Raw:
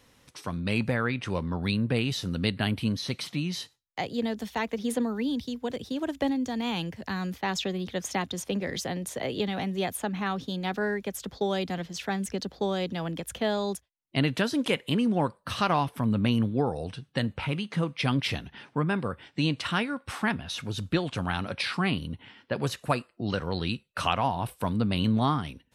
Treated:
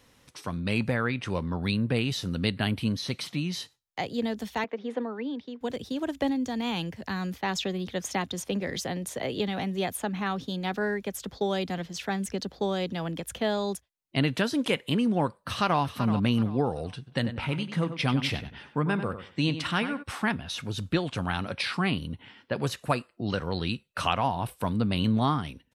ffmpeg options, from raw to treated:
-filter_complex "[0:a]asettb=1/sr,asplit=3[a][b][c];[a]atrim=end=4.644[d];[b]atrim=start=4.64:end=5.61,asetpts=PTS-STARTPTS,afade=t=in:d=0.004:c=qsin,afade=t=out:st=0.966:d=0.004:c=qsin,highpass=320,lowpass=2.2k[e];[c]atrim=start=5.606[f];[d][e]acrossfade=d=0.004:c1=hsin:c2=qsin[g];[g][f]acrossfade=d=0.004:c1=qsin:c2=hsin,asplit=2[h][i];[i]afade=t=in:st=15.34:d=0.01,afade=t=out:st=15.81:d=0.01,aecho=0:1:380|760|1140:0.281838|0.0845515|0.0253654[j];[h][j]amix=inputs=2:normalize=0,asplit=3[k][l][m];[k]afade=t=out:st=17.06:d=0.02[n];[l]asplit=2[o][p];[p]adelay=95,lowpass=f=3.3k:p=1,volume=-10dB,asplit=2[q][r];[r]adelay=95,lowpass=f=3.3k:p=1,volume=0.23,asplit=2[s][t];[t]adelay=95,lowpass=f=3.3k:p=1,volume=0.23[u];[o][q][s][u]amix=inputs=4:normalize=0,afade=t=in:st=17.06:d=0.02,afade=t=out:st=20.02:d=0.02[v];[m]afade=t=in:st=20.02:d=0.02[w];[n][v][w]amix=inputs=3:normalize=0"

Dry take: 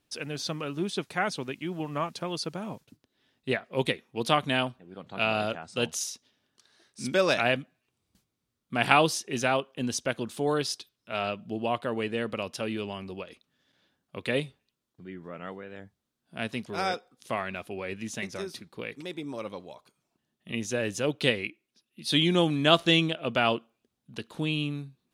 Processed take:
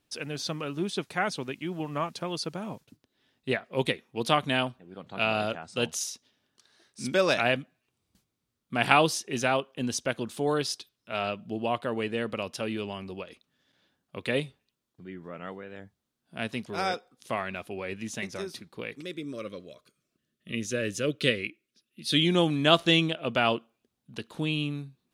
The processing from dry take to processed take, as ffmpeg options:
-filter_complex "[0:a]asettb=1/sr,asplit=3[a][b][c];[a]atrim=end=19.014[d];[b]atrim=start=19.01:end=22.25,asetpts=PTS-STARTPTS,afade=t=in:d=0.004:c=qsin,afade=t=out:st=3.236:d=0.004:c=qsin,asuperstop=centerf=840:order=4:qfactor=1.6[e];[c]atrim=start=22.246[f];[d][e]acrossfade=d=0.004:c1=hsin:c2=qsin[g];[g][f]acrossfade=d=0.004:c1=qsin:c2=hsin"

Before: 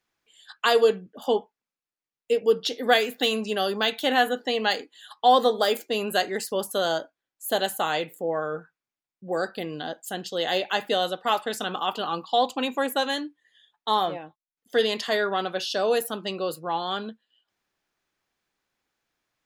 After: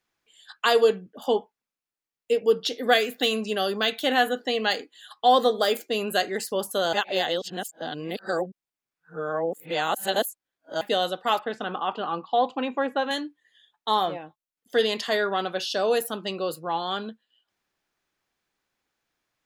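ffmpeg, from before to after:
-filter_complex "[0:a]asettb=1/sr,asplit=3[a][b][c];[a]atrim=end=2.674[d];[b]atrim=start=2.67:end=6.38,asetpts=PTS-STARTPTS,afade=t=in:d=0.004:c=qsin,afade=t=out:st=3.706:d=0.004:c=qsin,bandreject=f=900:w=6.2[e];[c]atrim=start=6.376[f];[d][e]acrossfade=d=0.004:c1=hsin:c2=qsin[g];[g][f]acrossfade=d=0.004:c1=qsin:c2=hsin,asettb=1/sr,asplit=3[h][i][j];[h]atrim=end=11.394[k];[i]atrim=start=11.39:end=13.11,asetpts=PTS-STARTPTS,afade=t=in:d=0.004:c=qsin,afade=t=out:st=1.716:d=0.004:c=qsin,highpass=120,lowpass=2.3k[l];[j]atrim=start=13.106[m];[k][l]acrossfade=d=0.004:c1=hsin:c2=qsin[n];[n][m]acrossfade=d=0.004:c1=qsin:c2=hsin,asplit=3[o][p][q];[o]atrim=end=6.932[r];[p]atrim=start=6.928:end=10.812,asetpts=PTS-STARTPTS,areverse[s];[q]atrim=start=10.808[t];[r][s]acrossfade=d=0.004:c1=hsin:c2=hsin[u];[u][t]acrossfade=d=0.004:c1=hsin:c2=hsin"

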